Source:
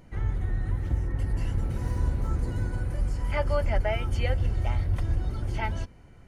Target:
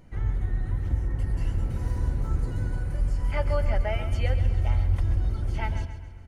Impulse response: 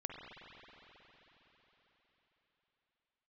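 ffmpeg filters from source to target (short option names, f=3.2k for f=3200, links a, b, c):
-filter_complex "[0:a]lowshelf=f=110:g=4,aecho=1:1:135|270|405|540|675:0.282|0.127|0.0571|0.0257|0.0116,asplit=2[a][b];[1:a]atrim=start_sample=2205[c];[b][c]afir=irnorm=-1:irlink=0,volume=-16dB[d];[a][d]amix=inputs=2:normalize=0,volume=-3dB"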